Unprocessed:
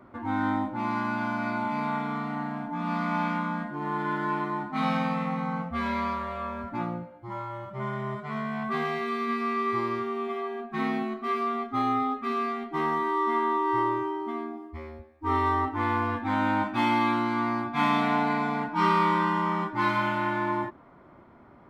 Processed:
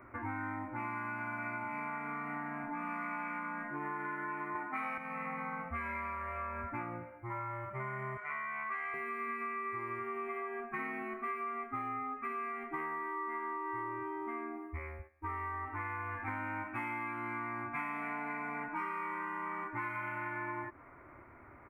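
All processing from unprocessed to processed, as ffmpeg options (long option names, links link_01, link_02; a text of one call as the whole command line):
ffmpeg -i in.wav -filter_complex "[0:a]asettb=1/sr,asplit=3[link_01][link_02][link_03];[link_01]atrim=end=4.554[link_04];[link_02]atrim=start=4.55:end=4.98,asetpts=PTS-STARTPTS,afade=type=in:duration=0.004:curve=qsin,afade=type=out:start_time=0.426:duration=0.004:curve=qsin,highpass=250,acontrast=77[link_05];[link_03]atrim=start=4.976[link_06];[link_04][link_05]acrossfade=duration=0.004:curve1=hsin:curve2=qsin[link_07];[link_07][link_06]acrossfade=duration=0.004:curve1=qsin:curve2=hsin,asettb=1/sr,asplit=3[link_08][link_09][link_10];[link_08]atrim=end=8.174[link_11];[link_09]atrim=start=8.17:end=8.94,asetpts=PTS-STARTPTS,afade=type=in:duration=0.004:curve=qsin,afade=type=out:start_time=0.766:duration=0.004:curve=qsin,bandpass=frequency=2400:width_type=q:width=0.54,asplit=2[link_12][link_13];[link_13]adelay=40,volume=-6dB[link_14];[link_12][link_14]amix=inputs=2:normalize=0,atrim=end_sample=33957[link_15];[link_10]atrim=start=8.936[link_16];[link_11][link_15]acrossfade=duration=0.004:curve1=hsin:curve2=qsin[link_17];[link_17][link_16]acrossfade=duration=0.004:curve1=qsin:curve2=hsin,asettb=1/sr,asplit=3[link_18][link_19][link_20];[link_18]atrim=end=14.794[link_21];[link_19]atrim=start=14.79:end=16.28,asetpts=PTS-STARTPTS,afade=type=in:duration=0.004:curve=qsin,afade=type=out:start_time=1.486:duration=0.004:curve=qsin,agate=range=-8dB:threshold=-54dB:ratio=16:release=100:detection=peak,acompressor=threshold=-30dB:ratio=2:attack=3.2:release=140:knee=1:detection=peak,equalizer=frequency=210:width_type=o:width=1.4:gain=-9[link_22];[link_20]atrim=start=16.276[link_23];[link_21][link_22]acrossfade=duration=0.004:curve1=hsin:curve2=qsin[link_24];[link_24][link_23]acrossfade=duration=0.004:curve1=qsin:curve2=hsin,firequalizer=gain_entry='entry(110,0);entry(180,-16);entry(290,-4);entry(420,-5);entry(780,-5);entry(1200,0);entry(2300,6);entry(3500,-26);entry(9600,1)':delay=0.05:min_phase=1,acompressor=threshold=-37dB:ratio=10,volume=1dB" out.wav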